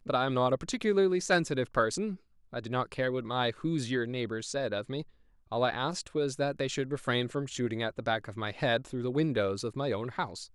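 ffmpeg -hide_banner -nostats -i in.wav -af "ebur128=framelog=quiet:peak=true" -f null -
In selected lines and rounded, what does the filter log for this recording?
Integrated loudness:
  I:         -31.3 LUFS
  Threshold: -41.4 LUFS
Loudness range:
  LRA:         3.1 LU
  Threshold: -52.0 LUFS
  LRA low:   -33.2 LUFS
  LRA high:  -30.1 LUFS
True peak:
  Peak:      -12.7 dBFS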